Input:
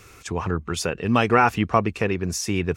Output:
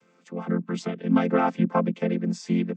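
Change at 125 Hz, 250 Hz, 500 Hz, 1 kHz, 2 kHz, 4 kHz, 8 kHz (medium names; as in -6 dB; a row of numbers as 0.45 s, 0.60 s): -3.5 dB, +1.5 dB, -3.5 dB, -7.0 dB, -10.0 dB, -11.0 dB, under -15 dB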